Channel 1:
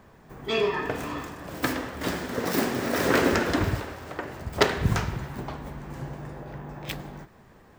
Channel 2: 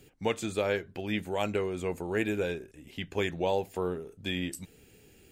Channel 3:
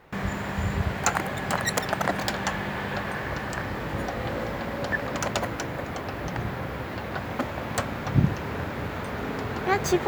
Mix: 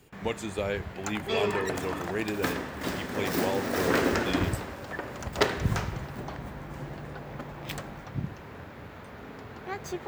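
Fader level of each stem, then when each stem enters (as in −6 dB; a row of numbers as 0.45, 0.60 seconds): −3.5, −2.0, −12.5 decibels; 0.80, 0.00, 0.00 seconds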